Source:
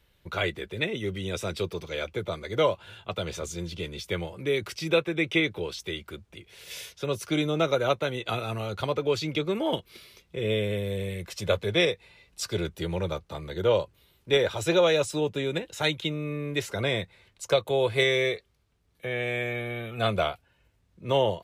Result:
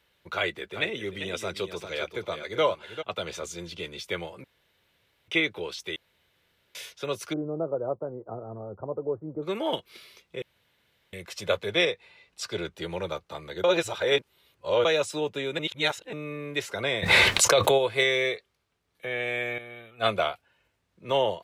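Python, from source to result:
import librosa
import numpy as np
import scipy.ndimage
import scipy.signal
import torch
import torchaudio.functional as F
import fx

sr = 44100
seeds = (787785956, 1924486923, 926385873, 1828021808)

y = fx.echo_single(x, sr, ms=394, db=-9.5, at=(0.73, 3.01), fade=0.02)
y = fx.gaussian_blur(y, sr, sigma=11.0, at=(7.32, 9.42), fade=0.02)
y = fx.high_shelf(y, sr, hz=9600.0, db=-9.0, at=(11.84, 12.83))
y = fx.env_flatten(y, sr, amount_pct=100, at=(17.02, 17.77), fade=0.02)
y = fx.band_widen(y, sr, depth_pct=100, at=(19.58, 20.2))
y = fx.edit(y, sr, fx.room_tone_fill(start_s=4.44, length_s=0.84),
    fx.room_tone_fill(start_s=5.96, length_s=0.79),
    fx.room_tone_fill(start_s=10.42, length_s=0.71),
    fx.reverse_span(start_s=13.64, length_s=1.21),
    fx.reverse_span(start_s=15.59, length_s=0.54), tone=tone)
y = fx.highpass(y, sr, hz=1100.0, slope=6)
y = fx.tilt_eq(y, sr, slope=-2.0)
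y = F.gain(torch.from_numpy(y), 4.5).numpy()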